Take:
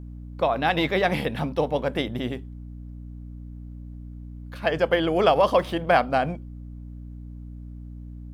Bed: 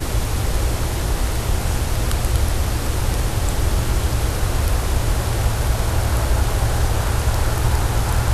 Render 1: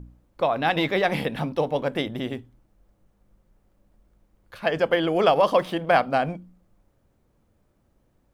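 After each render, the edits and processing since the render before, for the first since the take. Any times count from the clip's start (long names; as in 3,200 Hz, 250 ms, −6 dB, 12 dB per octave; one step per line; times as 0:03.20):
hum removal 60 Hz, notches 5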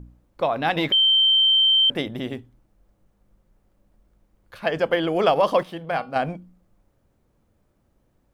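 0:00.92–0:01.90: beep over 3,120 Hz −14 dBFS
0:05.63–0:06.16: tuned comb filter 160 Hz, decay 0.26 s, harmonics odd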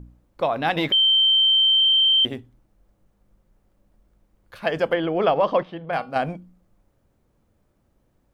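0:01.77: stutter in place 0.04 s, 12 plays
0:04.93–0:05.93: high-frequency loss of the air 230 metres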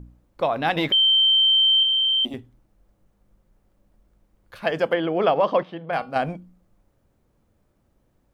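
0:01.83–0:02.34: phaser with its sweep stopped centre 440 Hz, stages 6
0:04.72–0:06.02: high-pass filter 120 Hz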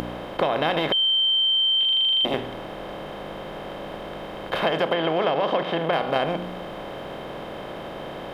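compressor on every frequency bin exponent 0.4
downward compressor 6 to 1, threshold −19 dBFS, peak gain reduction 8.5 dB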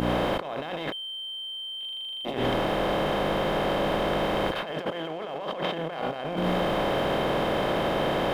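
compressor whose output falls as the input rises −33 dBFS, ratio −1
leveller curve on the samples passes 1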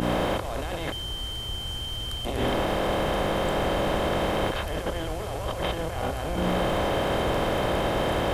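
mix in bed −15.5 dB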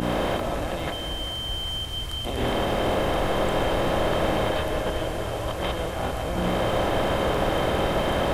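feedback echo with a high-pass in the loop 400 ms, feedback 79%, high-pass 470 Hz, level −12 dB
comb and all-pass reverb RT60 2.6 s, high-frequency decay 0.3×, pre-delay 85 ms, DRR 5.5 dB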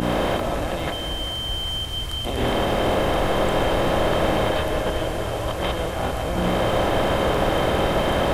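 level +3 dB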